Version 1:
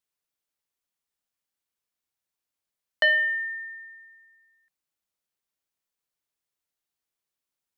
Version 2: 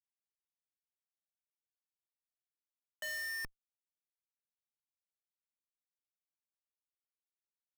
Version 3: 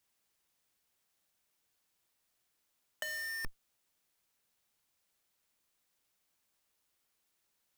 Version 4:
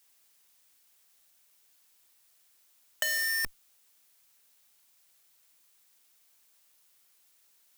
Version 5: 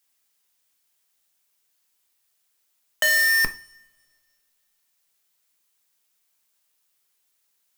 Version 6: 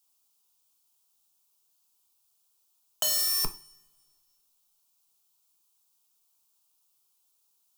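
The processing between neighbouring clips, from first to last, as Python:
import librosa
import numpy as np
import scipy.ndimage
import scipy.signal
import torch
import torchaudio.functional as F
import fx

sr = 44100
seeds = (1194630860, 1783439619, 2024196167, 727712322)

y1 = fx.schmitt(x, sr, flips_db=-28.0)
y1 = y1 * librosa.db_to_amplitude(-4.5)
y2 = fx.over_compress(y1, sr, threshold_db=-45.0, ratio=-0.5)
y2 = y2 * librosa.db_to_amplitude(9.0)
y3 = fx.tilt_eq(y2, sr, slope=2.0)
y3 = y3 * librosa.db_to_amplitude(7.0)
y4 = fx.leveller(y3, sr, passes=3)
y4 = fx.rev_double_slope(y4, sr, seeds[0], early_s=0.33, late_s=2.0, knee_db=-27, drr_db=7.5)
y5 = fx.fixed_phaser(y4, sr, hz=370.0, stages=8)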